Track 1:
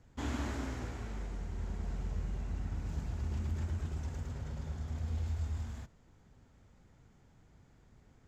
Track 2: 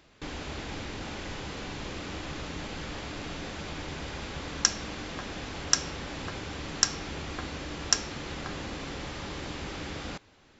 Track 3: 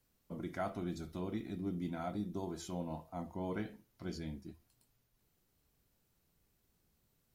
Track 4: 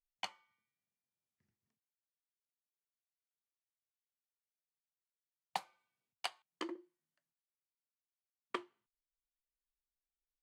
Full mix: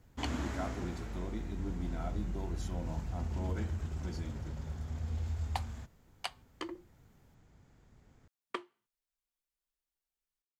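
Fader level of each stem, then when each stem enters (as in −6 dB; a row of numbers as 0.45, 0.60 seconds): −0.5 dB, muted, −2.0 dB, +1.0 dB; 0.00 s, muted, 0.00 s, 0.00 s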